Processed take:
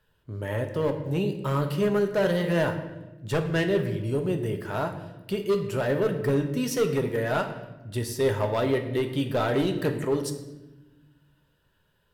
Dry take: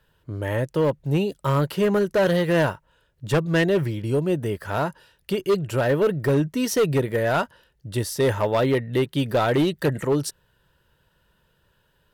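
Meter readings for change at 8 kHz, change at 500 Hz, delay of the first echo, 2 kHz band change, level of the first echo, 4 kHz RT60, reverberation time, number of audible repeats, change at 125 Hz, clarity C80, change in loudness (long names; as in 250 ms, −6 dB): −5.0 dB, −3.5 dB, no echo audible, −4.5 dB, no echo audible, 0.75 s, 1.1 s, no echo audible, −4.0 dB, 11.0 dB, −4.0 dB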